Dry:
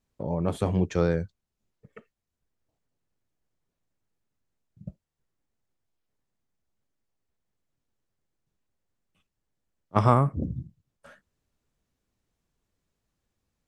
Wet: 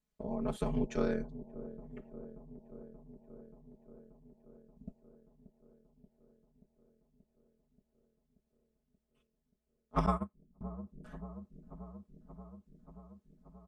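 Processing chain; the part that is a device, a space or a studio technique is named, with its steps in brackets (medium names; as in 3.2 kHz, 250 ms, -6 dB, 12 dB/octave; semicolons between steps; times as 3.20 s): ring-modulated robot voice (ring modulator 60 Hz; comb 4.7 ms, depth 99%); feedback echo behind a low-pass 581 ms, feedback 73%, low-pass 640 Hz, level -13.5 dB; 10.06–10.61 s: gate -18 dBFS, range -27 dB; trim -8 dB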